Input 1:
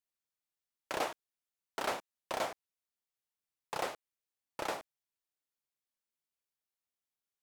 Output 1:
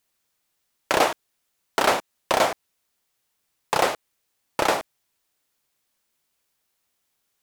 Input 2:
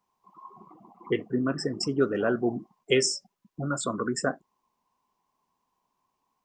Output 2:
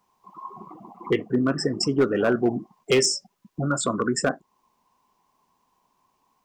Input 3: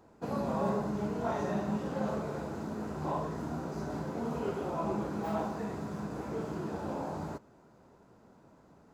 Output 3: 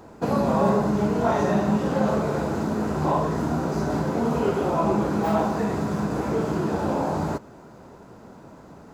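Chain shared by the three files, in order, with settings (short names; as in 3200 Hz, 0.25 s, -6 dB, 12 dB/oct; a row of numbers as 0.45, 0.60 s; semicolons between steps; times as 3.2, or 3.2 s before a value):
in parallel at -2 dB: compressor 12:1, threshold -38 dBFS; on the sum: overloaded stage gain 16.5 dB; match loudness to -24 LUFS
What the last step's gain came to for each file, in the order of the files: +13.0, +3.5, +9.0 dB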